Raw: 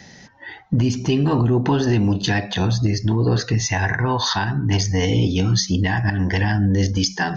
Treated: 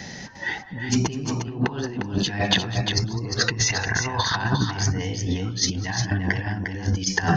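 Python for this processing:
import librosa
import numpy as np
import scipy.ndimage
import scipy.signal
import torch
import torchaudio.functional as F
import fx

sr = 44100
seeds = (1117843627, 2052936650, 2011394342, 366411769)

y = fx.dynamic_eq(x, sr, hz=1300.0, q=0.7, threshold_db=-36.0, ratio=4.0, max_db=4)
y = fx.over_compress(y, sr, threshold_db=-24.0, ratio=-0.5)
y = fx.echo_multitap(y, sr, ms=(204, 353), db=(-19.5, -6.5))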